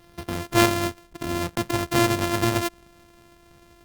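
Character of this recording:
a buzz of ramps at a fixed pitch in blocks of 128 samples
Opus

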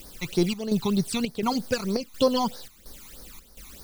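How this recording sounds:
a quantiser's noise floor 8 bits, dither triangular
phaser sweep stages 12, 3.2 Hz, lowest notch 500–2,800 Hz
chopped level 1.4 Hz, depth 65%, duty 75%

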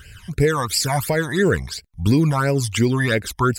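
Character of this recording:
phaser sweep stages 12, 2.9 Hz, lowest notch 420–1,200 Hz

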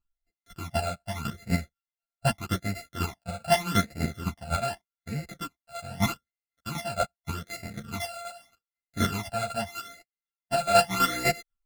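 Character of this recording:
a buzz of ramps at a fixed pitch in blocks of 64 samples
phaser sweep stages 12, 0.82 Hz, lowest notch 320–1,100 Hz
chopped level 4 Hz, depth 65%, duty 20%
a shimmering, thickened sound

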